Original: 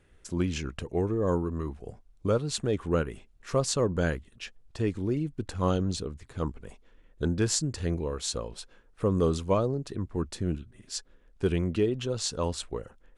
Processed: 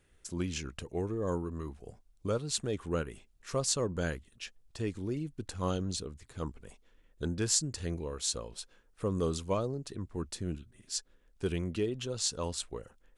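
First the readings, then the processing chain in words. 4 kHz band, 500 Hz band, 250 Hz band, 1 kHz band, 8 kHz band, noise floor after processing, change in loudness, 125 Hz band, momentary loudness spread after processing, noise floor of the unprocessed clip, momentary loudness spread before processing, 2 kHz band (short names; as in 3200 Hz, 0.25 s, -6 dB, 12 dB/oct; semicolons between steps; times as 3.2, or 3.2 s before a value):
-1.0 dB, -6.5 dB, -6.5 dB, -6.0 dB, +1.0 dB, -66 dBFS, -5.0 dB, -6.5 dB, 13 LU, -60 dBFS, 12 LU, -4.5 dB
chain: high shelf 3600 Hz +9 dB; gain -6.5 dB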